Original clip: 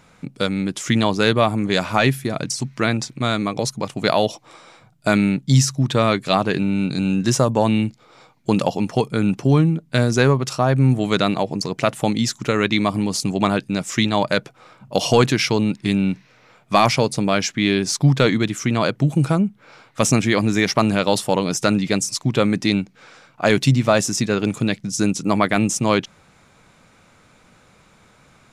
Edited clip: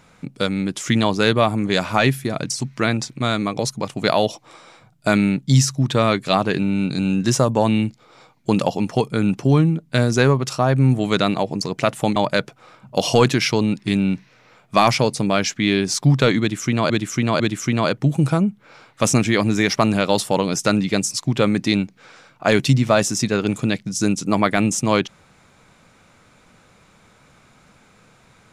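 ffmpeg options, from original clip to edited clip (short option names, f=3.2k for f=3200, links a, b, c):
-filter_complex "[0:a]asplit=4[a][b][c][d];[a]atrim=end=12.162[e];[b]atrim=start=14.138:end=18.882[f];[c]atrim=start=18.378:end=18.882[g];[d]atrim=start=18.378[h];[e][f]acrossfade=d=0.004:c1=hsin:c2=hsin[i];[i][g]acrossfade=d=0.004:c1=hsin:c2=hsin[j];[j][h]acrossfade=d=0.004:c1=hsin:c2=hsin"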